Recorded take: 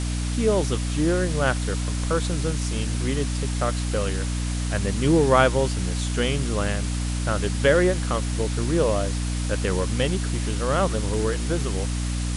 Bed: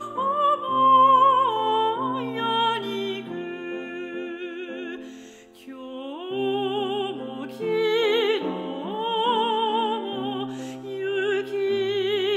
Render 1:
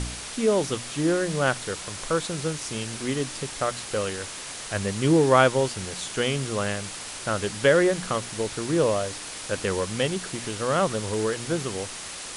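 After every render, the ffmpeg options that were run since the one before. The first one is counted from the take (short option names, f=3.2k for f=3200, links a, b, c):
-af "bandreject=f=60:t=h:w=4,bandreject=f=120:t=h:w=4,bandreject=f=180:t=h:w=4,bandreject=f=240:t=h:w=4,bandreject=f=300:t=h:w=4"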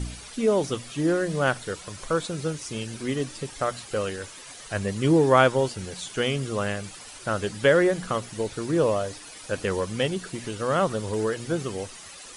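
-af "afftdn=nr=11:nf=-37"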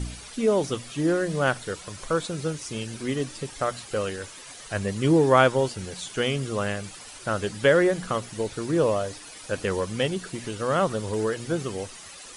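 -af anull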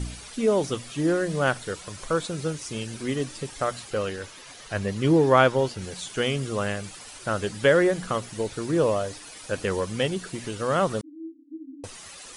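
-filter_complex "[0:a]asettb=1/sr,asplit=3[a][b][c];[a]atrim=end=3.904[d];[b]atrim=start=3.9:end=5.82,asetpts=PTS-STARTPTS,afade=t=in:d=0.004:c=qsin,afade=t=out:st=1.916:d=0.004:c=qsin,equalizer=f=8.5k:t=o:w=0.67:g=-6.5[e];[c]atrim=start=5.816[f];[d][e]acrossfade=d=0.004:c1=hsin:c2=qsin[g];[g][f]acrossfade=d=0.004:c1=qsin:c2=hsin,asettb=1/sr,asplit=3[h][i][j];[h]atrim=end=11.014[k];[i]atrim=start=11.01:end=11.84,asetpts=PTS-STARTPTS,afade=t=in:d=0.004:c=qsin,afade=t=out:st=0.826:d=0.004:c=qsin,asuperpass=centerf=290:order=20:qfactor=4.2[l];[j]atrim=start=11.836[m];[k][l]acrossfade=d=0.004:c1=hsin:c2=qsin[n];[n][m]acrossfade=d=0.004:c1=qsin:c2=hsin"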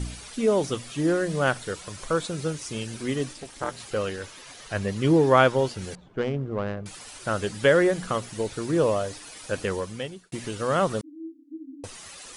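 -filter_complex "[0:a]asettb=1/sr,asplit=3[a][b][c];[a]atrim=end=3.334[d];[b]atrim=start=3.33:end=3.8,asetpts=PTS-STARTPTS,afade=t=in:d=0.004:c=qsin,afade=t=out:st=0.466:d=0.004:c=qsin,tremolo=f=280:d=0.974[e];[c]atrim=start=3.796[f];[d][e]acrossfade=d=0.004:c1=hsin:c2=qsin[g];[g][f]acrossfade=d=0.004:c1=qsin:c2=hsin,asettb=1/sr,asplit=3[h][i][j];[h]atrim=end=5.954[k];[i]atrim=start=5.95:end=6.86,asetpts=PTS-STARTPTS,afade=t=in:d=0.004:c=qsin,afade=t=out:st=0.906:d=0.004:c=qsin,adynamicsmooth=sensitivity=0.5:basefreq=690[l];[j]atrim=start=6.856[m];[k][l]acrossfade=d=0.004:c1=hsin:c2=qsin[n];[n][m]acrossfade=d=0.004:c1=qsin:c2=hsin,asplit=2[o][p];[o]atrim=end=10.32,asetpts=PTS-STARTPTS,afade=t=out:st=9.59:d=0.73[q];[p]atrim=start=10.32,asetpts=PTS-STARTPTS,afade=t=in:d=0.004:c=hsin[r];[q][r]concat=n=2:v=0:a=1"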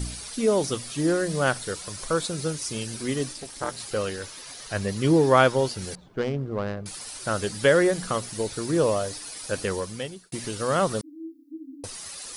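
-af "aexciter=amount=2.6:drive=1.8:freq=4.1k"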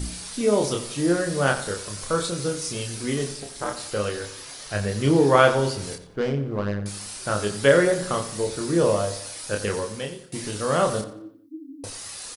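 -filter_complex "[0:a]asplit=2[a][b];[b]adelay=29,volume=-4dB[c];[a][c]amix=inputs=2:normalize=0,asplit=2[d][e];[e]adelay=89,lowpass=f=4.4k:p=1,volume=-12dB,asplit=2[f][g];[g]adelay=89,lowpass=f=4.4k:p=1,volume=0.45,asplit=2[h][i];[i]adelay=89,lowpass=f=4.4k:p=1,volume=0.45,asplit=2[j][k];[k]adelay=89,lowpass=f=4.4k:p=1,volume=0.45,asplit=2[l][m];[m]adelay=89,lowpass=f=4.4k:p=1,volume=0.45[n];[d][f][h][j][l][n]amix=inputs=6:normalize=0"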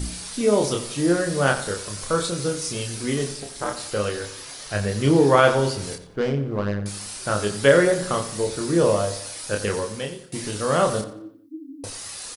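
-af "volume=1.5dB,alimiter=limit=-3dB:level=0:latency=1"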